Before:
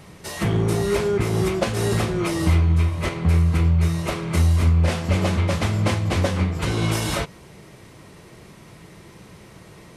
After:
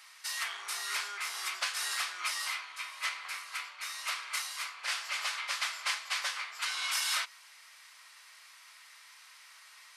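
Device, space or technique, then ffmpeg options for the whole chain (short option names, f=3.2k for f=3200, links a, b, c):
headphones lying on a table: -af "highpass=f=1.2k:w=0.5412,highpass=f=1.2k:w=1.3066,equalizer=f=4.8k:t=o:w=0.42:g=4.5,volume=-3dB"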